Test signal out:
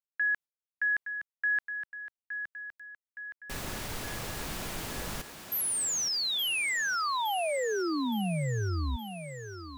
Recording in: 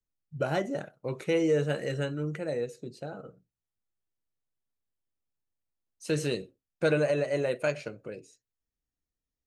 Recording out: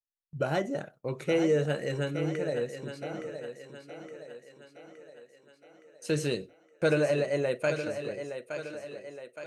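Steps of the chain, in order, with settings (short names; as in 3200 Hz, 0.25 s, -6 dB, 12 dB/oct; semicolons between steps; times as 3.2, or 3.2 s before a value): gate with hold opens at -44 dBFS; on a send: thinning echo 0.867 s, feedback 55%, high-pass 190 Hz, level -8.5 dB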